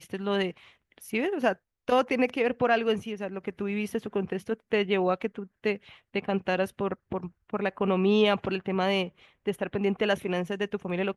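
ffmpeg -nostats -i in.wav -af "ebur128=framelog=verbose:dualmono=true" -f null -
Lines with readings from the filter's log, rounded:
Integrated loudness:
  I:         -25.6 LUFS
  Threshold: -35.7 LUFS
Loudness range:
  LRA:         2.9 LU
  Threshold: -45.5 LUFS
  LRA low:   -27.2 LUFS
  LRA high:  -24.4 LUFS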